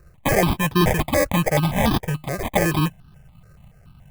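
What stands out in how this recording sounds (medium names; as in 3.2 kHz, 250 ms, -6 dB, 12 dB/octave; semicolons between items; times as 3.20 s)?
aliases and images of a low sample rate 1.4 kHz, jitter 0%; notches that jump at a steady rate 7 Hz 880–2100 Hz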